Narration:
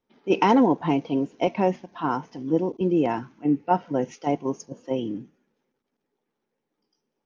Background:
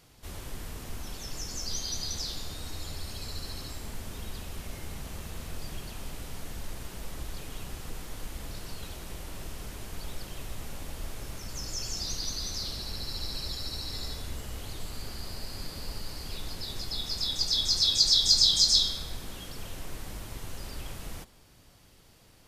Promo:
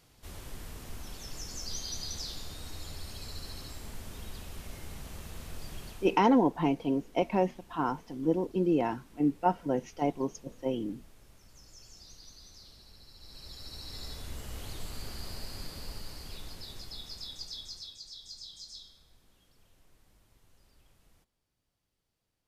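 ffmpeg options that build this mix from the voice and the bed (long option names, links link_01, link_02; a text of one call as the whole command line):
ffmpeg -i stem1.wav -i stem2.wav -filter_complex "[0:a]adelay=5750,volume=-5dB[link_01];[1:a]volume=12.5dB,afade=type=out:start_time=5.87:duration=0.33:silence=0.188365,afade=type=in:start_time=13.18:duration=1.44:silence=0.149624,afade=type=out:start_time=15.31:duration=2.67:silence=0.0707946[link_02];[link_01][link_02]amix=inputs=2:normalize=0" out.wav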